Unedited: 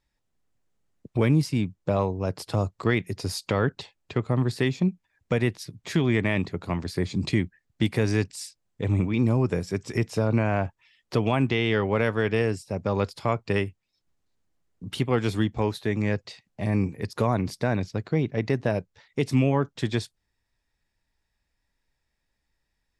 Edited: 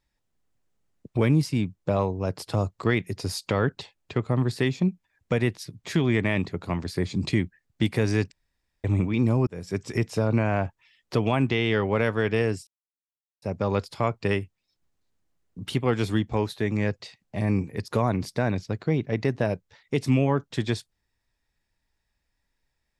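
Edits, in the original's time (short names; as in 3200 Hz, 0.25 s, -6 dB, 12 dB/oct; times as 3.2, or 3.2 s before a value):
8.32–8.84 room tone
9.47–9.76 fade in
12.67 insert silence 0.75 s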